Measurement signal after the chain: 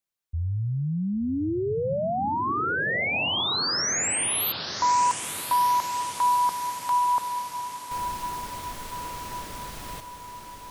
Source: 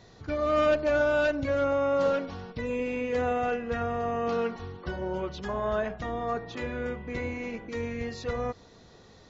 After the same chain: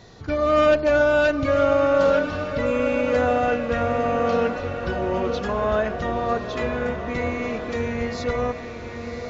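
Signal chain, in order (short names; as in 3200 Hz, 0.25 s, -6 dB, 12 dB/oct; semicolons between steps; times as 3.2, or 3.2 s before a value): diffused feedback echo 1.078 s, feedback 58%, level -8 dB; gain +6.5 dB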